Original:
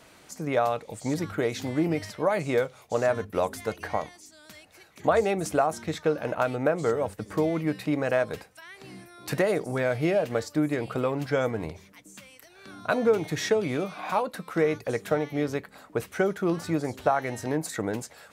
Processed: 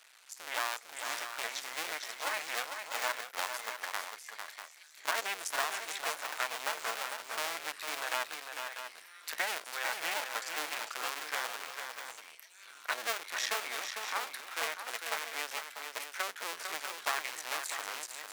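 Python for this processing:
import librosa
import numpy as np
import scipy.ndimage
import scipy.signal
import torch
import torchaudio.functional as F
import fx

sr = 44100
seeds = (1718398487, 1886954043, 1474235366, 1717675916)

y = fx.cycle_switch(x, sr, every=2, mode='muted')
y = scipy.signal.sosfilt(scipy.signal.butter(2, 1400.0, 'highpass', fs=sr, output='sos'), y)
y = fx.echo_multitap(y, sr, ms=(450, 645), db=(-6.5, -9.5))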